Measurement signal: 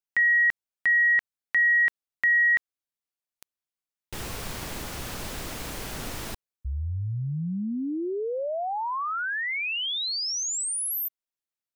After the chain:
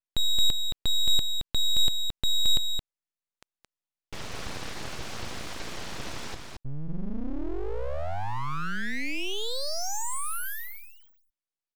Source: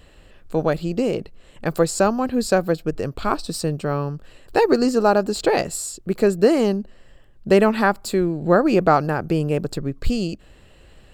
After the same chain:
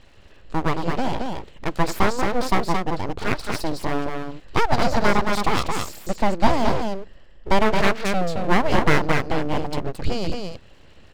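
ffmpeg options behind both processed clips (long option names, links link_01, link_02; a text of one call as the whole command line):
ffmpeg -i in.wav -af "lowpass=frequency=6300:width=0.5412,lowpass=frequency=6300:width=1.3066,aecho=1:1:221:0.596,aeval=exprs='abs(val(0))':channel_layout=same" out.wav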